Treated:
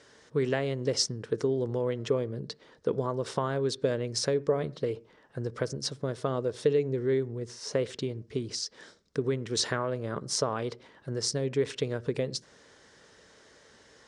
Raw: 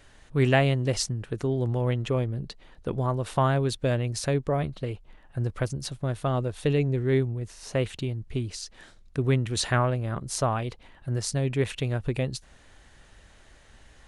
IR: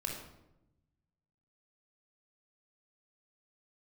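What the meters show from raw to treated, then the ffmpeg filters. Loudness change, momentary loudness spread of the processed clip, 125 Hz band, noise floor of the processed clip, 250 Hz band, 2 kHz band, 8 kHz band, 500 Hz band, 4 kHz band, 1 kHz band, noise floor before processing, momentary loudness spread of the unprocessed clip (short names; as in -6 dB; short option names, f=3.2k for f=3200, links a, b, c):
-3.5 dB, 9 LU, -9.5 dB, -59 dBFS, -4.0 dB, -6.5 dB, 0.0 dB, 0.0 dB, +1.0 dB, -6.5 dB, -55 dBFS, 11 LU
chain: -filter_complex "[0:a]acompressor=threshold=-25dB:ratio=6,highpass=180,equalizer=f=450:t=q:w=4:g=8,equalizer=f=740:t=q:w=4:g=-5,equalizer=f=2.6k:t=q:w=4:g=-6,equalizer=f=5.3k:t=q:w=4:g=8,lowpass=f=8.6k:w=0.5412,lowpass=f=8.6k:w=1.3066,asplit=2[a][b];[1:a]atrim=start_sample=2205,afade=t=out:st=0.19:d=0.01,atrim=end_sample=8820,lowpass=2.1k[c];[b][c]afir=irnorm=-1:irlink=0,volume=-17.5dB[d];[a][d]amix=inputs=2:normalize=0"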